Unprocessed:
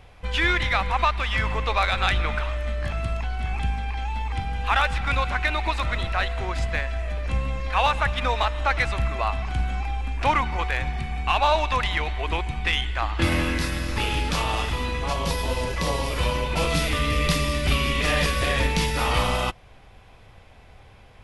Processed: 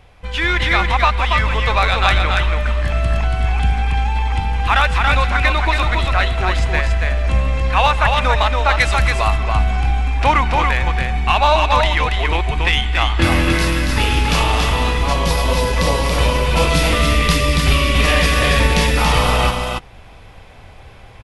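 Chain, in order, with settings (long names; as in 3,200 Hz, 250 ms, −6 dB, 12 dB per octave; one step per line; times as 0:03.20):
single-tap delay 281 ms −4 dB
automatic gain control gain up to 6 dB
0:08.79–0:09.36: high-shelf EQ 4,000 Hz → 6,200 Hz +11 dB
level +1.5 dB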